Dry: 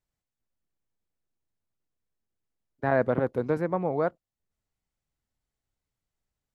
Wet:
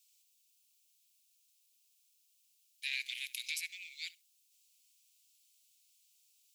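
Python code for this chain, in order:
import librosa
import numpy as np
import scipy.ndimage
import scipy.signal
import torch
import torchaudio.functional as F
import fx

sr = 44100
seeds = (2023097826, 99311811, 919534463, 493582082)

y = scipy.signal.sosfilt(scipy.signal.butter(12, 2400.0, 'highpass', fs=sr, output='sos'), x)
y = fx.high_shelf(y, sr, hz=3200.0, db=10.5)
y = fx.room_flutter(y, sr, wall_m=11.6, rt60_s=0.2)
y = fx.band_squash(y, sr, depth_pct=70, at=(2.93, 3.69))
y = y * 10.0 ** (13.5 / 20.0)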